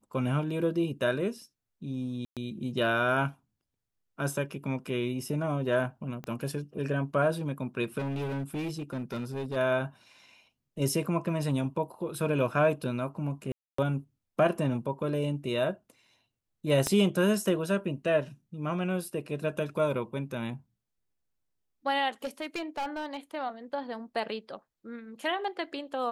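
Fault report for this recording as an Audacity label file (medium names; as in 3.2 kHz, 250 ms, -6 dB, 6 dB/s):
2.250000	2.370000	dropout 117 ms
6.240000	6.240000	pop -25 dBFS
7.980000	9.570000	clipped -30 dBFS
13.520000	13.780000	dropout 264 ms
16.870000	16.870000	pop -13 dBFS
22.240000	23.170000	clipped -29 dBFS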